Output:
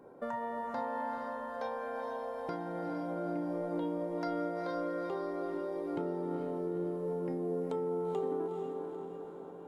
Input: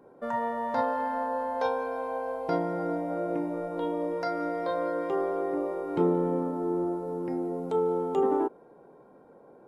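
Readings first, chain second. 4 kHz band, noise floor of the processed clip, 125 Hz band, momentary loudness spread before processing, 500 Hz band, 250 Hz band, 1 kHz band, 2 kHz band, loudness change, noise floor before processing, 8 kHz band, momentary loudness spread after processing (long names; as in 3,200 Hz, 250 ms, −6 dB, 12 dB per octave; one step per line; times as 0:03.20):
−6.5 dB, −47 dBFS, −5.0 dB, 6 LU, −6.5 dB, −6.0 dB, −8.0 dB, −6.5 dB, −7.0 dB, −55 dBFS, can't be measured, 5 LU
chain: downward compressor, threshold −35 dBFS, peak gain reduction 14 dB
on a send: feedback delay with all-pass diffusion 459 ms, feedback 56%, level −4 dB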